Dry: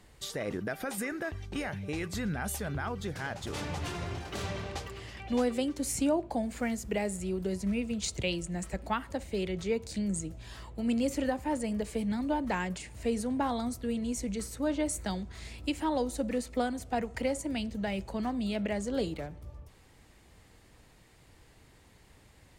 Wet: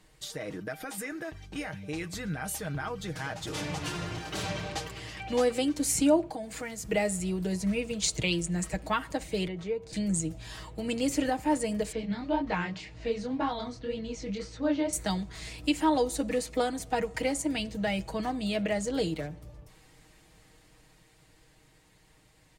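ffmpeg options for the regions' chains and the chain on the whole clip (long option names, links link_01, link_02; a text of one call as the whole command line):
ffmpeg -i in.wav -filter_complex "[0:a]asettb=1/sr,asplit=3[link_01][link_02][link_03];[link_01]atrim=end=6.304[link_04];[link_02]atrim=start=6.3:end=6.89,asetpts=PTS-STARTPTS,afade=type=in:duration=0.004:curve=qsin,afade=type=out:start_time=0.586:duration=0.004:curve=qsin,highpass=frequency=120:poles=1,asubboost=boost=6.5:cutoff=180,acompressor=threshold=-39dB:ratio=2:attack=3.2:release=140:knee=1:detection=peak[link_05];[link_03]atrim=start=6.886[link_06];[link_04][link_05]acrossfade=duration=0.004:curve1=hsin:curve2=qsin[link_07];[link_07][link_06]acrossfade=duration=0.004:curve1=qsin:curve2=hsin,asettb=1/sr,asplit=3[link_08][link_09][link_10];[link_08]atrim=end=9.474[link_11];[link_09]atrim=start=9.47:end=9.93,asetpts=PTS-STARTPTS,afade=type=in:duration=0.004:curve=qsin,afade=type=out:start_time=0.456:duration=0.004:curve=qsin,lowpass=frequency=1100:poles=1,acrossover=split=94|360[link_12][link_13][link_14];[link_12]acompressor=threshold=-54dB:ratio=4[link_15];[link_13]acompressor=threshold=-43dB:ratio=4[link_16];[link_14]acompressor=threshold=-36dB:ratio=4[link_17];[link_15][link_16][link_17]amix=inputs=3:normalize=0[link_18];[link_10]atrim=start=9.926[link_19];[link_11][link_18]acrossfade=duration=0.004:curve1=hsin:curve2=qsin[link_20];[link_20][link_19]acrossfade=duration=0.004:curve1=qsin:curve2=hsin,asettb=1/sr,asplit=3[link_21][link_22][link_23];[link_21]atrim=end=11.924[link_24];[link_22]atrim=start=11.92:end=14.93,asetpts=PTS-STARTPTS,afade=type=in:duration=0.004:curve=qsin,afade=type=out:start_time=3.006:duration=0.004:curve=qsin,lowpass=frequency=5100:width=0.5412,lowpass=frequency=5100:width=1.3066,flanger=delay=17.5:depth=7.9:speed=1.9[link_25];[link_23]atrim=start=14.926[link_26];[link_24][link_25]acrossfade=duration=0.004:curve1=hsin:curve2=qsin[link_27];[link_27][link_26]acrossfade=duration=0.004:curve1=qsin:curve2=hsin,equalizer=frequency=6400:width=0.35:gain=3,aecho=1:1:6.4:0.62,dynaudnorm=framelen=600:gausssize=11:maxgain=6.5dB,volume=-4.5dB" out.wav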